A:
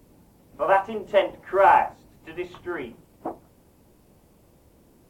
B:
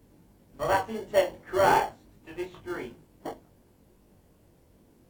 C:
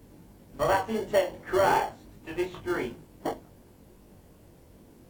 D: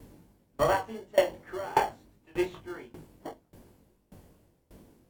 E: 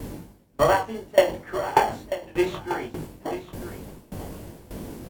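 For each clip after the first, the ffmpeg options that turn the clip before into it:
-filter_complex "[0:a]asplit=2[a][b];[b]acrusher=samples=35:mix=1:aa=0.000001,volume=-8dB[c];[a][c]amix=inputs=2:normalize=0,flanger=delay=19.5:depth=3.4:speed=2.7,volume=-2.5dB"
-af "acompressor=threshold=-29dB:ratio=2.5,volume=6dB"
-af "aeval=exprs='val(0)*pow(10,-23*if(lt(mod(1.7*n/s,1),2*abs(1.7)/1000),1-mod(1.7*n/s,1)/(2*abs(1.7)/1000),(mod(1.7*n/s,1)-2*abs(1.7)/1000)/(1-2*abs(1.7)/1000))/20)':c=same,volume=3.5dB"
-af "areverse,acompressor=mode=upward:threshold=-30dB:ratio=2.5,areverse,aecho=1:1:940:0.237,volume=6dB"

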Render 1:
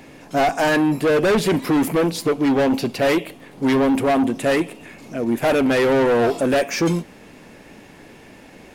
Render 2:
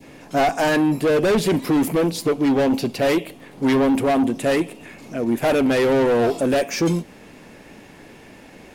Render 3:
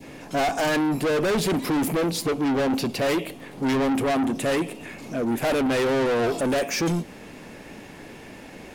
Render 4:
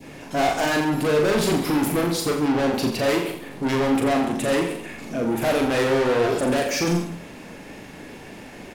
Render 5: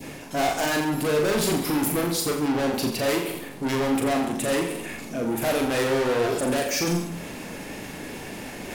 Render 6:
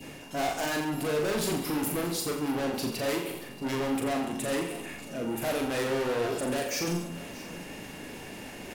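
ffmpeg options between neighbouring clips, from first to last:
-af "adynamicequalizer=threshold=0.0178:dfrequency=1500:dqfactor=0.72:tfrequency=1500:tqfactor=0.72:attack=5:release=100:ratio=0.375:range=2:mode=cutabove:tftype=bell"
-af "asoftclip=type=tanh:threshold=-22.5dB,volume=2dB"
-af "aecho=1:1:40|84|132.4|185.6|244.2:0.631|0.398|0.251|0.158|0.1"
-af "areverse,acompressor=mode=upward:threshold=-25dB:ratio=2.5,areverse,crystalizer=i=1:c=0,volume=-3dB"
-af "aeval=exprs='val(0)+0.00447*sin(2*PI*2800*n/s)':c=same,aecho=1:1:629:0.133,volume=-6dB"

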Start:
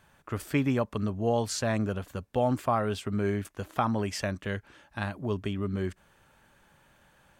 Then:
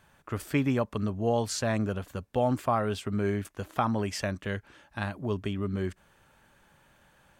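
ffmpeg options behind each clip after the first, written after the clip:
-af anull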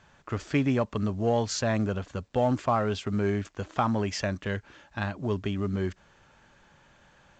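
-filter_complex "[0:a]asplit=2[a][b];[b]asoftclip=type=tanh:threshold=-28.5dB,volume=-9dB[c];[a][c]amix=inputs=2:normalize=0" -ar 16000 -c:a pcm_alaw

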